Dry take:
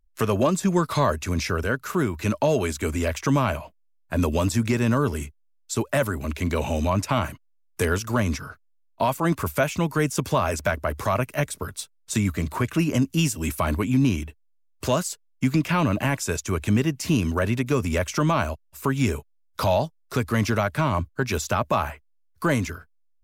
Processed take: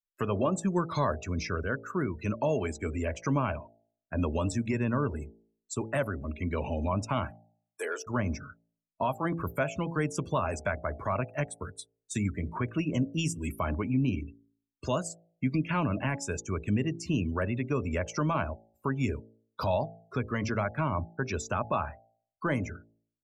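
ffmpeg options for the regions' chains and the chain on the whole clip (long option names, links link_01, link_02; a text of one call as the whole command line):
ffmpeg -i in.wav -filter_complex "[0:a]asettb=1/sr,asplit=3[link_01][link_02][link_03];[link_01]atrim=end=7.304[link_04];[link_02]atrim=start=7.3:end=8.07,asetpts=PTS-STARTPTS,afade=type=in:duration=0.004:curve=qsin,afade=type=out:start_time=0.766:duration=0.004:curve=qsin,highpass=frequency=400:width=0.5412,highpass=frequency=400:width=1.3066,highshelf=frequency=9600:gain=3,asoftclip=type=hard:threshold=-20.5dB[link_05];[link_03]atrim=start=8.066[link_06];[link_04][link_05]acrossfade=duration=0.004:curve1=hsin:curve2=qsin[link_07];[link_07][link_06]acrossfade=duration=0.004:curve1=qsin:curve2=hsin,afftdn=noise_reduction=35:noise_floor=-33,bandreject=frequency=55.87:width_type=h:width=4,bandreject=frequency=111.74:width_type=h:width=4,bandreject=frequency=167.61:width_type=h:width=4,bandreject=frequency=223.48:width_type=h:width=4,bandreject=frequency=279.35:width_type=h:width=4,bandreject=frequency=335.22:width_type=h:width=4,bandreject=frequency=391.09:width_type=h:width=4,bandreject=frequency=446.96:width_type=h:width=4,bandreject=frequency=502.83:width_type=h:width=4,bandreject=frequency=558.7:width_type=h:width=4,bandreject=frequency=614.57:width_type=h:width=4,bandreject=frequency=670.44:width_type=h:width=4,bandreject=frequency=726.31:width_type=h:width=4,bandreject=frequency=782.18:width_type=h:width=4,bandreject=frequency=838.05:width_type=h:width=4,volume=-6.5dB" out.wav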